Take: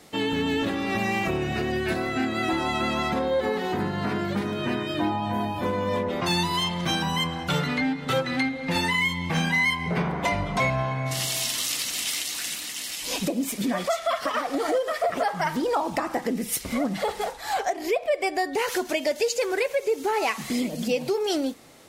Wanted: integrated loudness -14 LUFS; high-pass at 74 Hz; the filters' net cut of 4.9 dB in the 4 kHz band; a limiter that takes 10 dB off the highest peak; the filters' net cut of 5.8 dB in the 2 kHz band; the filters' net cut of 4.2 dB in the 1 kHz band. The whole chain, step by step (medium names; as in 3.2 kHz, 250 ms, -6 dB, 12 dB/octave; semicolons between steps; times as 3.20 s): high-pass 74 Hz; peaking EQ 1 kHz -4.5 dB; peaking EQ 2 kHz -4.5 dB; peaking EQ 4 kHz -4.5 dB; trim +18 dB; peak limiter -5.5 dBFS